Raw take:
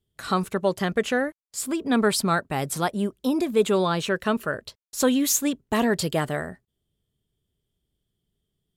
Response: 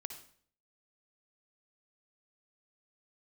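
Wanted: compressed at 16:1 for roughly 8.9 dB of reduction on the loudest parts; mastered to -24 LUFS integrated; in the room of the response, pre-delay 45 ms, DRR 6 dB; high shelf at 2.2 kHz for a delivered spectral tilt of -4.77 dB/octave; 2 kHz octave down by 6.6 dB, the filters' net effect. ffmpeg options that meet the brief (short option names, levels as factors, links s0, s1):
-filter_complex "[0:a]equalizer=f=2000:t=o:g=-7,highshelf=f=2200:g=-4,acompressor=threshold=0.0631:ratio=16,asplit=2[s0][s1];[1:a]atrim=start_sample=2205,adelay=45[s2];[s1][s2]afir=irnorm=-1:irlink=0,volume=0.668[s3];[s0][s3]amix=inputs=2:normalize=0,volume=1.88"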